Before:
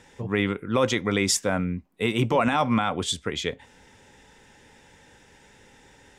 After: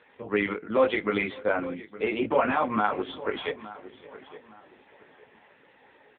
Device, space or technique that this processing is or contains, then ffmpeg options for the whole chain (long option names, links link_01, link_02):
satellite phone: -filter_complex "[0:a]asettb=1/sr,asplit=3[link_01][link_02][link_03];[link_01]atrim=end=1.364[link_04];[link_02]atrim=start=1.36:end=3.17,asetpts=PTS-STARTPTS,afade=type=in:duration=0.004:curve=qsin,afade=type=out:start_time=1.806:duration=0.004:curve=qsin,equalizer=frequency=4800:width=0.76:gain=-5.5[link_05];[link_03]atrim=start=3.166[link_06];[link_04][link_05]acrossfade=duration=0.004:curve1=hsin:curve2=qsin[link_07];[link_07][link_06]acrossfade=duration=0.004:curve1=qsin:curve2=hsin,highpass=310,lowpass=3000,asplit=2[link_08][link_09];[link_09]adelay=19,volume=-2.5dB[link_10];[link_08][link_10]amix=inputs=2:normalize=0,aecho=1:1:559:0.0794,asplit=2[link_11][link_12];[link_12]adelay=864,lowpass=frequency=2900:poles=1,volume=-16dB,asplit=2[link_13][link_14];[link_14]adelay=864,lowpass=frequency=2900:poles=1,volume=0.32,asplit=2[link_15][link_16];[link_16]adelay=864,lowpass=frequency=2900:poles=1,volume=0.32[link_17];[link_11][link_13][link_15][link_17]amix=inputs=4:normalize=0" -ar 8000 -c:a libopencore_amrnb -b:a 6700